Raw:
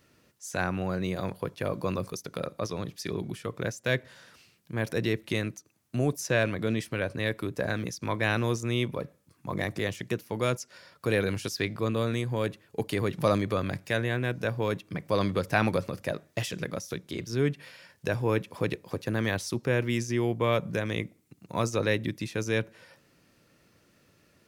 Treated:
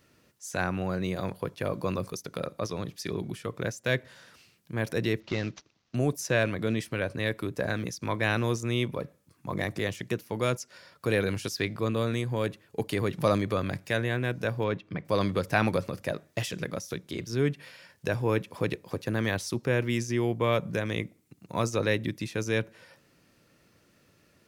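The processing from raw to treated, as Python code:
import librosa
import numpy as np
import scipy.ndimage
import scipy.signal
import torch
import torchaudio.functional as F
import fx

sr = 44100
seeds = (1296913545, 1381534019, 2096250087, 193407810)

y = fx.cvsd(x, sr, bps=32000, at=(5.2, 5.95))
y = fx.lowpass(y, sr, hz=3600.0, slope=12, at=(14.64, 15.05))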